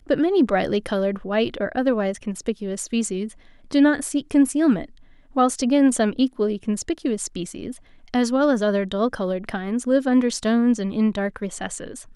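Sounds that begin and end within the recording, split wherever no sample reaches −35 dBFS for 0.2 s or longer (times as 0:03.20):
0:03.71–0:04.85
0:05.36–0:07.77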